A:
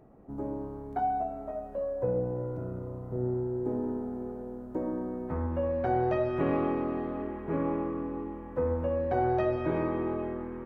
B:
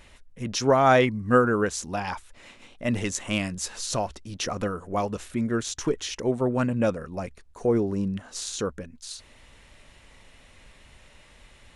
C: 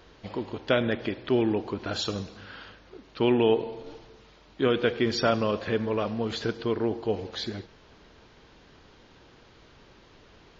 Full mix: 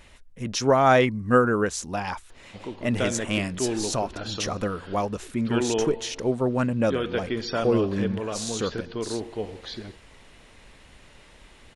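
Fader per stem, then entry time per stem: muted, +0.5 dB, −3.5 dB; muted, 0.00 s, 2.30 s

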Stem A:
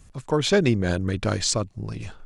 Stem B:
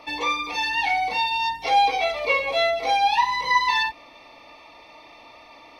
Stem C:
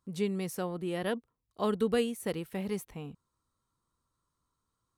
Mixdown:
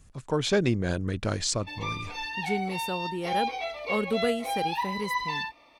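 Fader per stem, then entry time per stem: −4.5, −10.0, +1.0 decibels; 0.00, 1.60, 2.30 seconds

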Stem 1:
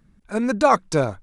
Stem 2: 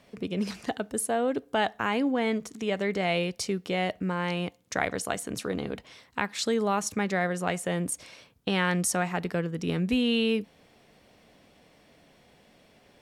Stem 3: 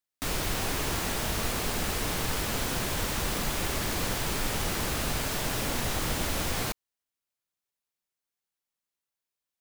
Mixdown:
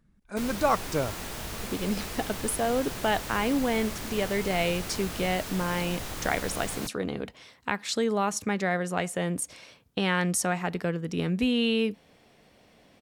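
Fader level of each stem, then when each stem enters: −8.0, 0.0, −6.5 decibels; 0.00, 1.50, 0.15 seconds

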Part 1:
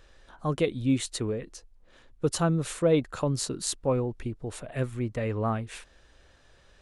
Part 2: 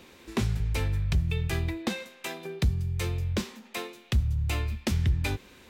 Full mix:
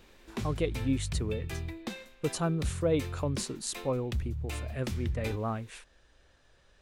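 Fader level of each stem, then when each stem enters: −5.0, −8.0 decibels; 0.00, 0.00 seconds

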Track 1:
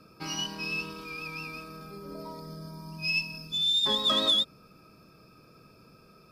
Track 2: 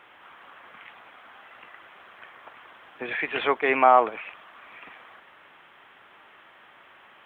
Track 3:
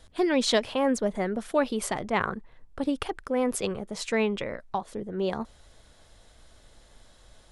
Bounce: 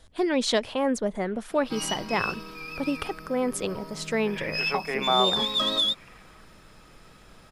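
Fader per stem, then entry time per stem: 0.0, −7.5, −0.5 decibels; 1.50, 1.25, 0.00 seconds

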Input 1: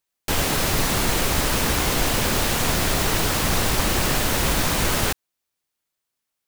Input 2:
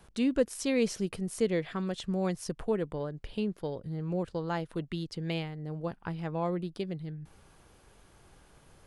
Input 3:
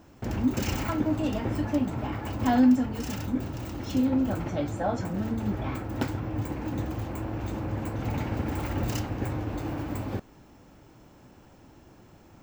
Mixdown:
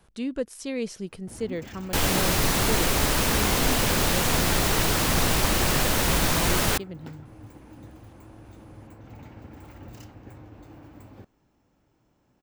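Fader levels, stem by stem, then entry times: −1.5, −2.5, −14.5 decibels; 1.65, 0.00, 1.05 seconds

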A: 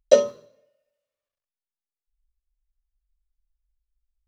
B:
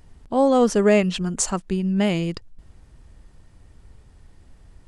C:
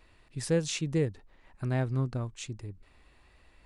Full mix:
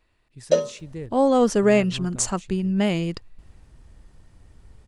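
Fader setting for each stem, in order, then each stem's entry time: −4.0, −1.0, −7.0 decibels; 0.40, 0.80, 0.00 seconds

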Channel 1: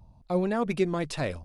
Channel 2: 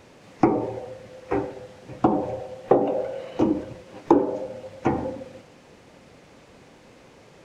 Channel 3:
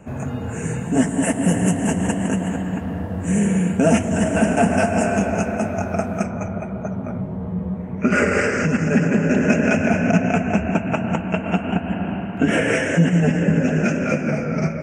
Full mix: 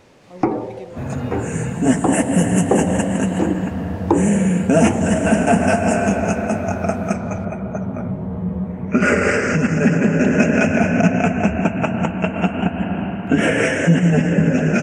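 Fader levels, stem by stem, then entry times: −13.0, +0.5, +2.0 decibels; 0.00, 0.00, 0.90 seconds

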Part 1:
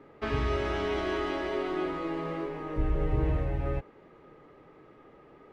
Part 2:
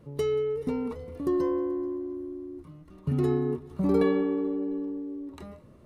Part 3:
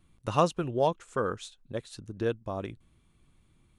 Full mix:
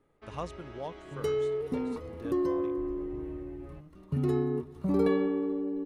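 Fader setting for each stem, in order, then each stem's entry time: −17.5, −2.5, −13.5 decibels; 0.00, 1.05, 0.00 seconds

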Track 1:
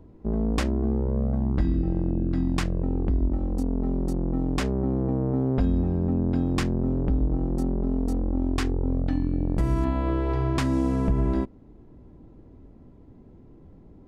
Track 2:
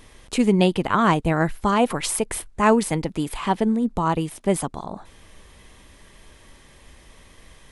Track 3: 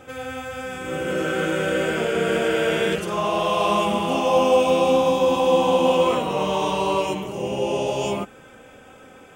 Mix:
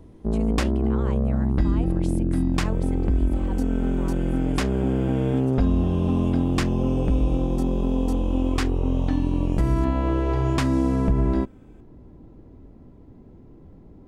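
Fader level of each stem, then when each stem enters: +2.5, −20.0, −19.0 decibels; 0.00, 0.00, 2.45 seconds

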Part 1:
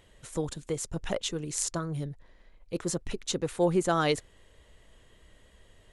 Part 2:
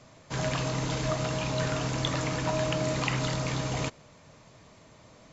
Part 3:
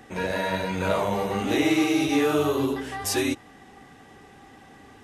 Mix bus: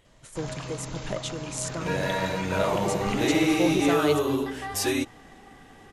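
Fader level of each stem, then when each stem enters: −2.0, −7.0, −1.0 decibels; 0.00, 0.05, 1.70 seconds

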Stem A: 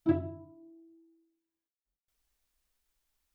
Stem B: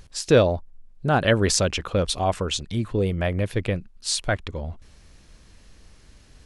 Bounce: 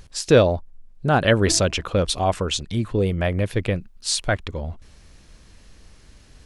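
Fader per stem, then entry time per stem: −5.0, +2.0 decibels; 1.40, 0.00 seconds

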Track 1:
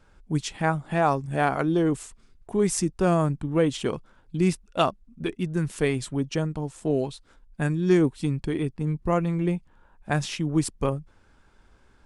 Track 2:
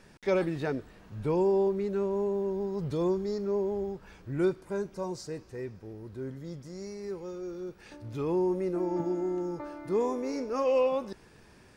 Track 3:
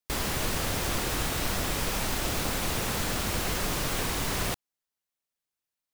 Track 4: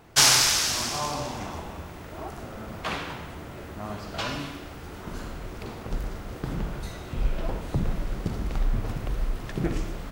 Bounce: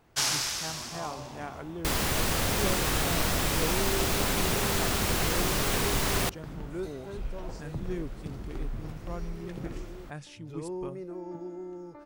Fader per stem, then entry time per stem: −16.5, −9.0, +2.0, −10.0 decibels; 0.00, 2.35, 1.75, 0.00 seconds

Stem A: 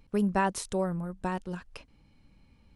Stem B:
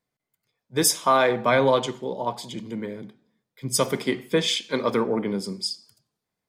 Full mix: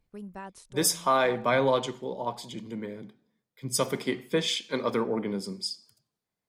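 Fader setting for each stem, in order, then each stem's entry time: −15.0, −4.5 decibels; 0.00, 0.00 seconds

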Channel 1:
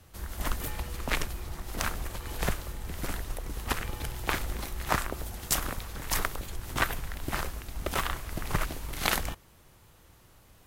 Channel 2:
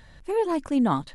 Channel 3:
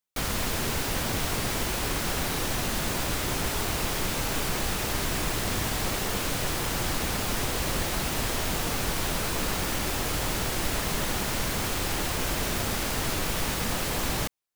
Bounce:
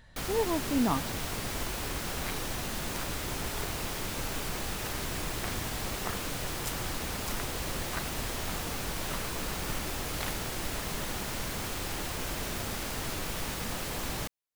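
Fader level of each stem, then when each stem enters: −12.0, −5.5, −6.5 decibels; 1.15, 0.00, 0.00 seconds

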